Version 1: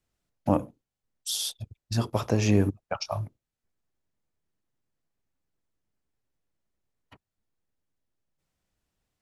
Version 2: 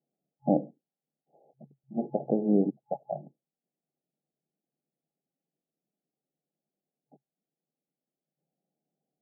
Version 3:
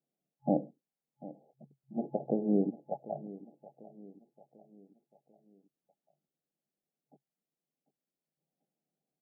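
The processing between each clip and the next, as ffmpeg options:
-af "afftfilt=real='re*between(b*sr/4096,130,840)':imag='im*between(b*sr/4096,130,840)':win_size=4096:overlap=0.75"
-af "aecho=1:1:744|1488|2232|2976:0.133|0.0627|0.0295|0.0138,volume=-4dB"

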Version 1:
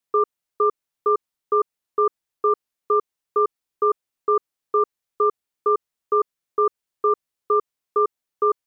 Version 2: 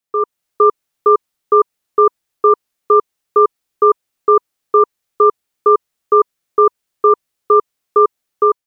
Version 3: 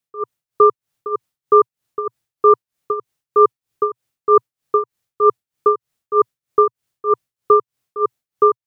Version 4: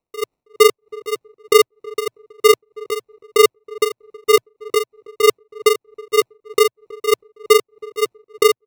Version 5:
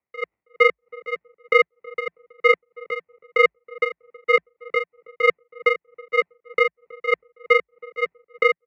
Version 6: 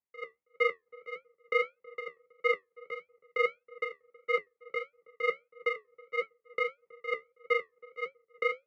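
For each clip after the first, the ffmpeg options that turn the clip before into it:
-af "bandreject=f=980:w=17,dynaudnorm=f=110:g=5:m=11.5dB"
-af "equalizer=f=120:w=1.7:g=12,tremolo=f=3.2:d=0.86"
-filter_complex "[0:a]acrusher=samples=27:mix=1:aa=0.000001,asplit=2[a][b];[b]adelay=322,lowpass=f=890:p=1,volume=-20dB,asplit=2[c][d];[d]adelay=322,lowpass=f=890:p=1,volume=0.2[e];[a][c][e]amix=inputs=3:normalize=0"
-af "lowpass=f=1.9k:t=q:w=7.3,afreqshift=51,volume=-7.5dB"
-af "flanger=delay=9.9:depth=4.8:regen=-58:speed=1.6:shape=triangular,volume=-8dB"

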